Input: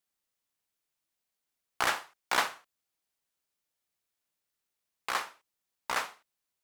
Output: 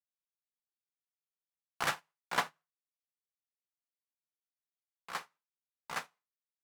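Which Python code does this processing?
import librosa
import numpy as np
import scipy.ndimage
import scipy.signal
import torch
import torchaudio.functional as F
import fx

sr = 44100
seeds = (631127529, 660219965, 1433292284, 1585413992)

p1 = fx.high_shelf(x, sr, hz=2300.0, db=-4.0, at=(2.18, 5.13))
p2 = fx.level_steps(p1, sr, step_db=22)
p3 = p1 + F.gain(torch.from_numpy(p2), -2.0).numpy()
p4 = fx.peak_eq(p3, sr, hz=160.0, db=15.0, octaves=0.39)
p5 = fx.rev_gated(p4, sr, seeds[0], gate_ms=150, shape='falling', drr_db=8.5)
p6 = fx.upward_expand(p5, sr, threshold_db=-43.0, expansion=2.5)
y = F.gain(torch.from_numpy(p6), -2.0).numpy()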